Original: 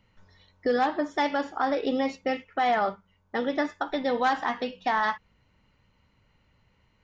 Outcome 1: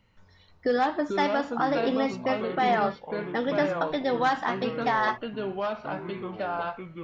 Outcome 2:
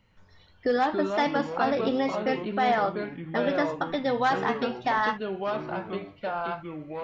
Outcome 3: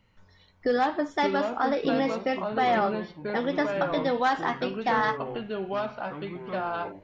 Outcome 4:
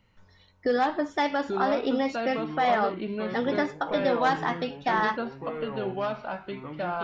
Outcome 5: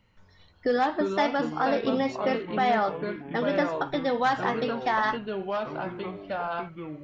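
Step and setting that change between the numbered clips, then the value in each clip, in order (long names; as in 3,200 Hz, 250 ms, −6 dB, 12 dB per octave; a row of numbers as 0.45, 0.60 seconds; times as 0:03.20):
delay with pitch and tempo change per echo, delay time: 270, 108, 400, 665, 174 milliseconds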